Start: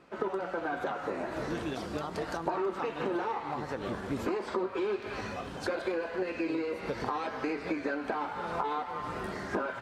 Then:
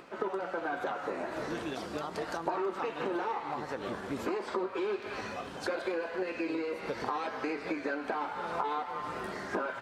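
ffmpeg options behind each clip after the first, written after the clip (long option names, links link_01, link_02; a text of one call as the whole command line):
ffmpeg -i in.wav -af "lowshelf=frequency=160:gain=-10,acompressor=mode=upward:threshold=-45dB:ratio=2.5" out.wav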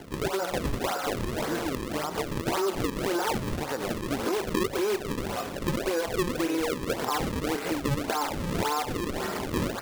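ffmpeg -i in.wav -filter_complex "[0:a]asplit=2[link_01][link_02];[link_02]alimiter=level_in=5dB:limit=-24dB:level=0:latency=1:release=63,volume=-5dB,volume=1dB[link_03];[link_01][link_03]amix=inputs=2:normalize=0,acrusher=samples=35:mix=1:aa=0.000001:lfo=1:lforange=56:lforate=1.8,volume=1dB" out.wav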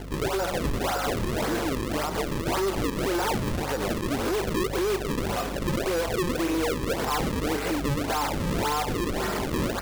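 ffmpeg -i in.wav -af "volume=27dB,asoftclip=hard,volume=-27dB,aeval=exprs='val(0)+0.00891*(sin(2*PI*50*n/s)+sin(2*PI*2*50*n/s)/2+sin(2*PI*3*50*n/s)/3+sin(2*PI*4*50*n/s)/4+sin(2*PI*5*50*n/s)/5)':channel_layout=same,volume=4dB" out.wav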